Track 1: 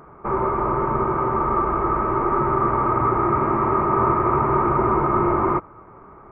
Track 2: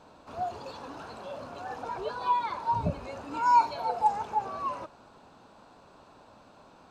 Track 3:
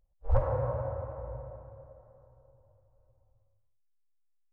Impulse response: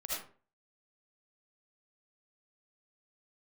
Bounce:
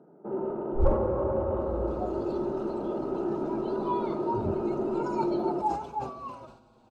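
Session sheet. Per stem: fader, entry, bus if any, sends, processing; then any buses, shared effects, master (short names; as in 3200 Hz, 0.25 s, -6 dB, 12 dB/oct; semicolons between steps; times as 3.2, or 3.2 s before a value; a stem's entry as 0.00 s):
-6.5 dB, 0.00 s, send -6 dB, steep high-pass 170 Hz 36 dB/oct; soft clip -12 dBFS, distortion -21 dB; running mean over 39 samples
-6.0 dB, 1.60 s, no send, low shelf 470 Hz +8 dB; endless flanger 5.9 ms -0.38 Hz
+1.5 dB, 0.50 s, no send, comb 3.6 ms, depth 73%; vocal rider within 4 dB 0.5 s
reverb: on, RT60 0.40 s, pre-delay 35 ms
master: bell 1800 Hz -10 dB 0.33 oct; sustainer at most 87 dB/s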